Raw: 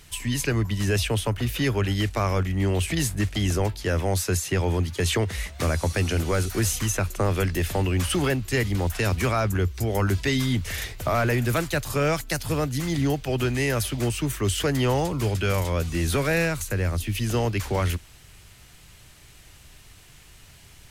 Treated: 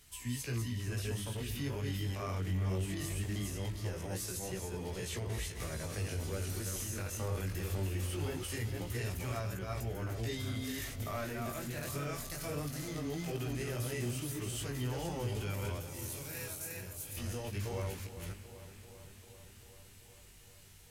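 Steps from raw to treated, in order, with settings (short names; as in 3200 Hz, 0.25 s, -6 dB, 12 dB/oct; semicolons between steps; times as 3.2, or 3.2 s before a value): reverse delay 0.251 s, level -2.5 dB; 15.79–17.17 pre-emphasis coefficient 0.8; harmonic-percussive split percussive -9 dB; high shelf 6400 Hz +9.5 dB; limiter -19.5 dBFS, peak gain reduction 8.5 dB; chorus 0.21 Hz, delay 16 ms, depth 5.9 ms; on a send: dark delay 0.391 s, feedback 73%, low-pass 3600 Hz, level -13 dB; on the sum: gain -7.5 dB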